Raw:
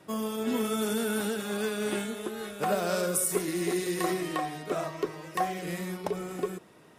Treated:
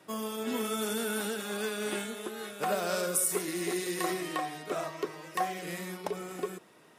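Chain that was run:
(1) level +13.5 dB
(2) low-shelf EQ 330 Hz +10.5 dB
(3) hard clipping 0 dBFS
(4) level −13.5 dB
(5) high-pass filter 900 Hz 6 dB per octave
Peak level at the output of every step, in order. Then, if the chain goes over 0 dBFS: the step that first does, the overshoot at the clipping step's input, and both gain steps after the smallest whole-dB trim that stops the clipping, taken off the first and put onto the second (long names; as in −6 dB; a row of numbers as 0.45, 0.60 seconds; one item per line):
−0.5, +3.0, 0.0, −13.5, −14.5 dBFS
step 2, 3.0 dB
step 1 +10.5 dB, step 4 −10.5 dB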